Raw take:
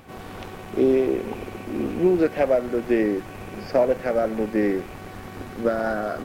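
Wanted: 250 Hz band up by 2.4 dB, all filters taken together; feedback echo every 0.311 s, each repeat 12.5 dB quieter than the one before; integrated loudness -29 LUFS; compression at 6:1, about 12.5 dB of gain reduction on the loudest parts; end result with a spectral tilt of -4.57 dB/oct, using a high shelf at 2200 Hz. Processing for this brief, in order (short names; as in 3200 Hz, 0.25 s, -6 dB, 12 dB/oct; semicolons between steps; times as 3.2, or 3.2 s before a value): bell 250 Hz +3.5 dB; high shelf 2200 Hz -4 dB; compressor 6:1, threshold -27 dBFS; feedback echo 0.311 s, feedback 24%, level -12.5 dB; gain +3 dB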